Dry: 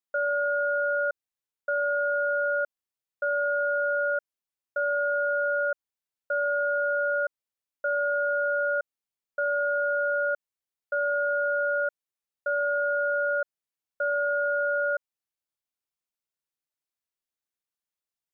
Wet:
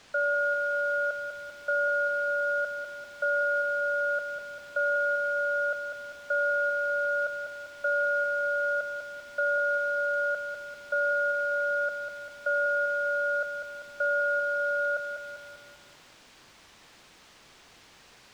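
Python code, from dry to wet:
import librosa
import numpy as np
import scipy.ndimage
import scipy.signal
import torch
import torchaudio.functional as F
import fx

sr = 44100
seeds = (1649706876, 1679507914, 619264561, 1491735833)

y = scipy.signal.sosfilt(scipy.signal.butter(4, 550.0, 'highpass', fs=sr, output='sos'), x)
y = fx.dmg_noise_colour(y, sr, seeds[0], colour='white', level_db=-50.0)
y = fx.air_absorb(y, sr, metres=120.0)
y = fx.echo_crushed(y, sr, ms=197, feedback_pct=55, bits=10, wet_db=-7.0)
y = y * 10.0 ** (1.5 / 20.0)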